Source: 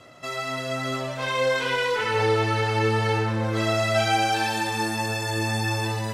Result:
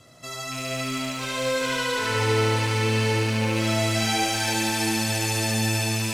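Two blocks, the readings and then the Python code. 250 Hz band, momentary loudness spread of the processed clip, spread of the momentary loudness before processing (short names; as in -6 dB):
+2.5 dB, 6 LU, 7 LU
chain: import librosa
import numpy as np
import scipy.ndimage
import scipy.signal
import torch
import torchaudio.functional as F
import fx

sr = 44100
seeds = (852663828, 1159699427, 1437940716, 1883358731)

p1 = fx.rattle_buzz(x, sr, strikes_db=-35.0, level_db=-23.0)
p2 = fx.bass_treble(p1, sr, bass_db=9, treble_db=12)
p3 = p2 + fx.echo_thinned(p2, sr, ms=73, feedback_pct=81, hz=190.0, wet_db=-4.0, dry=0)
p4 = fx.echo_crushed(p3, sr, ms=333, feedback_pct=80, bits=8, wet_db=-9.0)
y = F.gain(torch.from_numpy(p4), -7.0).numpy()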